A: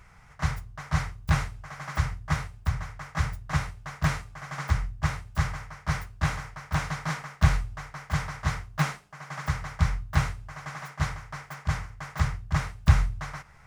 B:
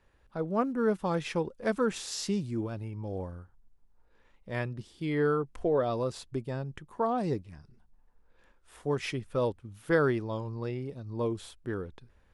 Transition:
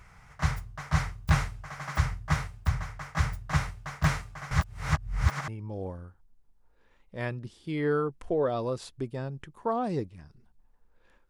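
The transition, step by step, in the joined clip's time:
A
4.51–5.48 s: reverse
5.48 s: go over to B from 2.82 s

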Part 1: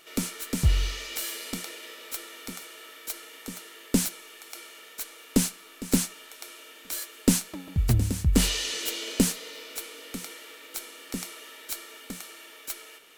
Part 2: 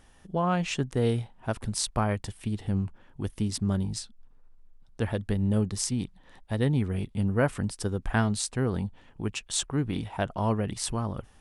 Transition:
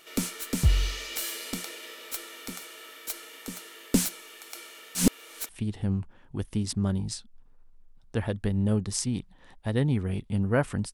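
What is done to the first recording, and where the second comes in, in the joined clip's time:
part 1
4.95–5.49 s: reverse
5.49 s: go over to part 2 from 2.34 s

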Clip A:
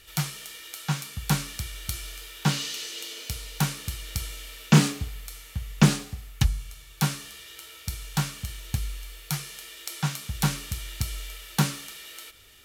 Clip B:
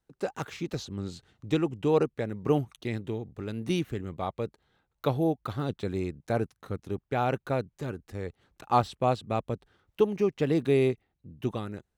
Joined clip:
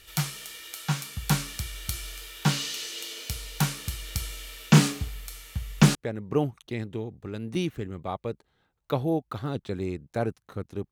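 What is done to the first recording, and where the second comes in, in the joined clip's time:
clip A
5.95 s: go over to clip B from 2.09 s

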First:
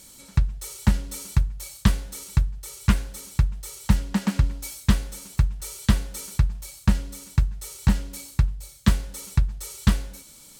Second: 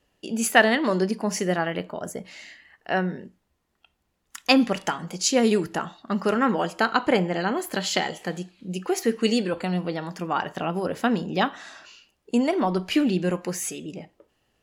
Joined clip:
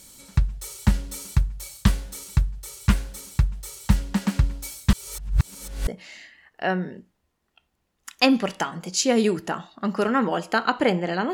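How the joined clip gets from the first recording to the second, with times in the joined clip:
first
4.93–5.87 s: reverse
5.87 s: go over to second from 2.14 s

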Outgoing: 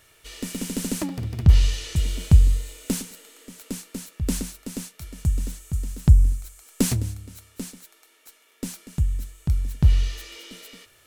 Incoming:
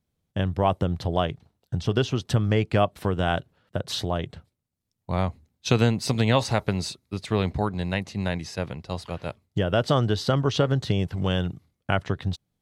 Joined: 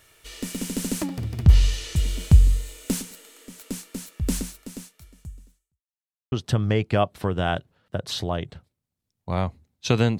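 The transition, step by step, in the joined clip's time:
outgoing
4.41–5.81 s: fade out quadratic
5.81–6.32 s: mute
6.32 s: go over to incoming from 2.13 s

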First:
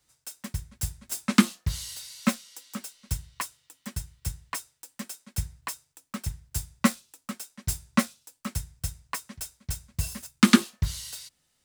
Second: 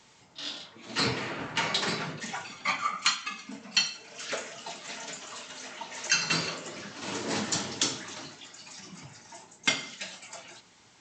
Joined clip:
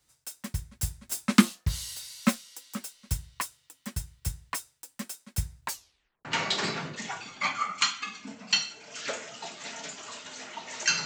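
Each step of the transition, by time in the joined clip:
first
5.63 s: tape stop 0.62 s
6.25 s: go over to second from 1.49 s

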